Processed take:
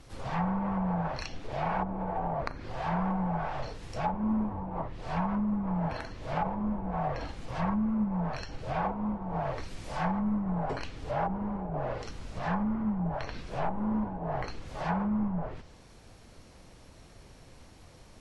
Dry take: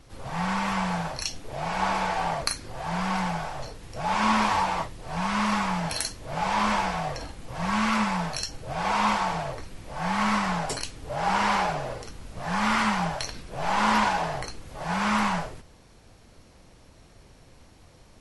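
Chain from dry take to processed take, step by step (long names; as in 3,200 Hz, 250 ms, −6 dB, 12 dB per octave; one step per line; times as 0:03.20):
treble cut that deepens with the level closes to 320 Hz, closed at −21.5 dBFS
0:09.22–0:10.20: high-shelf EQ 5,000 Hz +9 dB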